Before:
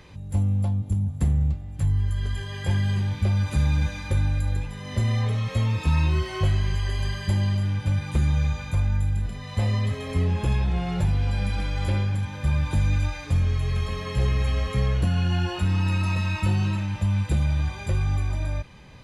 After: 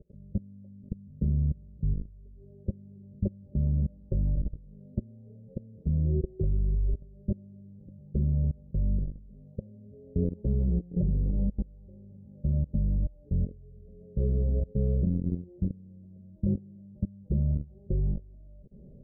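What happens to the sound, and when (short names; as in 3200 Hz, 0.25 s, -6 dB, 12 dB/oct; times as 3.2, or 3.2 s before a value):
6.23–6.94 tilt -2.5 dB/oct
whole clip: comb 5 ms, depth 60%; level quantiser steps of 24 dB; elliptic low-pass 540 Hz, stop band 50 dB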